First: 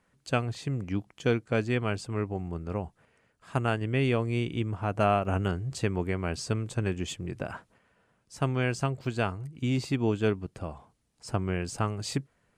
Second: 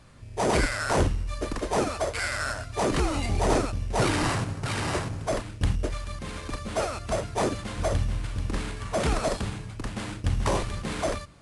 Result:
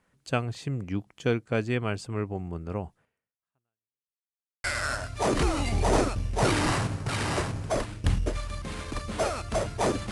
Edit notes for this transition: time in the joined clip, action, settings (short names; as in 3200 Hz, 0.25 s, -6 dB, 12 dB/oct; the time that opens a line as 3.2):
first
2.93–4.16 fade out exponential
4.16–4.64 mute
4.64 switch to second from 2.21 s